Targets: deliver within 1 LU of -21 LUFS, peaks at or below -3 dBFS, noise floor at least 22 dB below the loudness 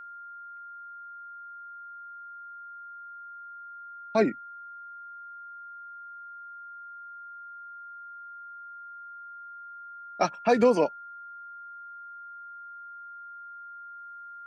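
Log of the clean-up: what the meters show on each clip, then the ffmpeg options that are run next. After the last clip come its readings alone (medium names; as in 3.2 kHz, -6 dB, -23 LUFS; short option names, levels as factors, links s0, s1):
steady tone 1.4 kHz; tone level -41 dBFS; loudness -34.5 LUFS; peak level -10.0 dBFS; loudness target -21.0 LUFS
-> -af "bandreject=f=1400:w=30"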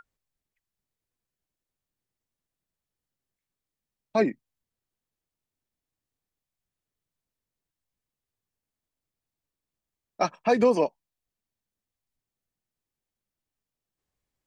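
steady tone not found; loudness -25.5 LUFS; peak level -10.0 dBFS; loudness target -21.0 LUFS
-> -af "volume=1.68"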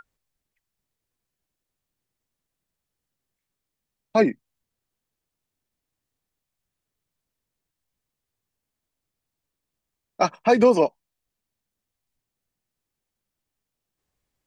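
loudness -21.0 LUFS; peak level -5.5 dBFS; noise floor -85 dBFS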